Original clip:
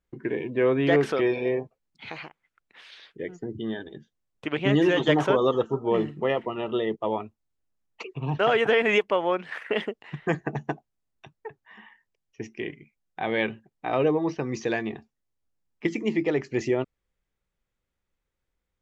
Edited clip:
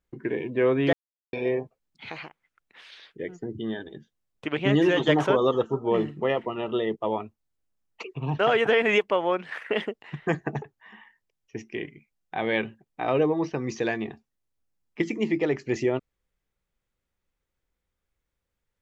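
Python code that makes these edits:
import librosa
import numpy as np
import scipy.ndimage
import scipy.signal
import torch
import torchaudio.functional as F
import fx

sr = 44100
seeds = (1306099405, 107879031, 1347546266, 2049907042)

y = fx.edit(x, sr, fx.silence(start_s=0.93, length_s=0.4),
    fx.cut(start_s=10.62, length_s=0.85), tone=tone)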